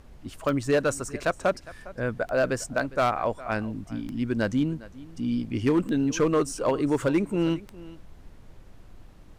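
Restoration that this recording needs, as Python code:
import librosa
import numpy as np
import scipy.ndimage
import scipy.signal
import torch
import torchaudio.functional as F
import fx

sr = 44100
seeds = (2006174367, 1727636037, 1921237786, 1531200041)

y = fx.fix_declip(x, sr, threshold_db=-16.0)
y = fx.fix_declick_ar(y, sr, threshold=10.0)
y = fx.noise_reduce(y, sr, print_start_s=8.87, print_end_s=9.37, reduce_db=24.0)
y = fx.fix_echo_inverse(y, sr, delay_ms=407, level_db=-19.5)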